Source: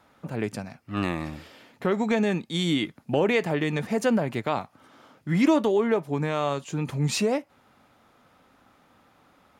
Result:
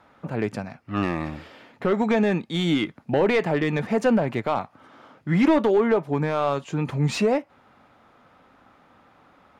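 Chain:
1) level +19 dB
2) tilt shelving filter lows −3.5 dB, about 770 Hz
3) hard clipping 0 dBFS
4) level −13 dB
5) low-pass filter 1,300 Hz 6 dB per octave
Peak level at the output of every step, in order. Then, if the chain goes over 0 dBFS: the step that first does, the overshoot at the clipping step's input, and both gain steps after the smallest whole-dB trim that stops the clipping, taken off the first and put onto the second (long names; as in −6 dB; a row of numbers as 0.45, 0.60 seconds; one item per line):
+8.0, +8.5, 0.0, −13.0, −13.0 dBFS
step 1, 8.5 dB
step 1 +10 dB, step 4 −4 dB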